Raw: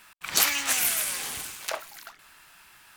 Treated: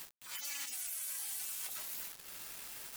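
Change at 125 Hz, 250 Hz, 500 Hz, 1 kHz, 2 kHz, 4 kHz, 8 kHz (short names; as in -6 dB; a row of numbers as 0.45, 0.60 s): under -15 dB, -19.5 dB, -22.0 dB, -19.5 dB, -18.5 dB, -16.0 dB, -13.0 dB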